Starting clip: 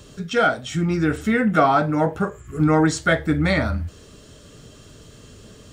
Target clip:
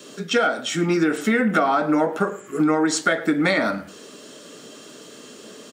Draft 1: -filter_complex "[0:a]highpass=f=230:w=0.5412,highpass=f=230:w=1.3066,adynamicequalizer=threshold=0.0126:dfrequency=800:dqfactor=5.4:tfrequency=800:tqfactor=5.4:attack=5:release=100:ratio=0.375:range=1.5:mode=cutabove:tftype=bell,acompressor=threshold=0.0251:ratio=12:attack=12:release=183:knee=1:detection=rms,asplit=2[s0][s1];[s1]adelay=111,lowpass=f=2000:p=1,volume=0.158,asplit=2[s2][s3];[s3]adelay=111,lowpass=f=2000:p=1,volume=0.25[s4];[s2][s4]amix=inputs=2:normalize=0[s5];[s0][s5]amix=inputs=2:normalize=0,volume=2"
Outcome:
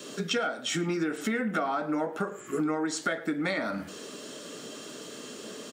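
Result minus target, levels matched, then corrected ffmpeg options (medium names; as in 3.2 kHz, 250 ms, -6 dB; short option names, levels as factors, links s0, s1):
compression: peak gain reduction +10 dB
-filter_complex "[0:a]highpass=f=230:w=0.5412,highpass=f=230:w=1.3066,adynamicequalizer=threshold=0.0126:dfrequency=800:dqfactor=5.4:tfrequency=800:tqfactor=5.4:attack=5:release=100:ratio=0.375:range=1.5:mode=cutabove:tftype=bell,acompressor=threshold=0.0891:ratio=12:attack=12:release=183:knee=1:detection=rms,asplit=2[s0][s1];[s1]adelay=111,lowpass=f=2000:p=1,volume=0.158,asplit=2[s2][s3];[s3]adelay=111,lowpass=f=2000:p=1,volume=0.25[s4];[s2][s4]amix=inputs=2:normalize=0[s5];[s0][s5]amix=inputs=2:normalize=0,volume=2"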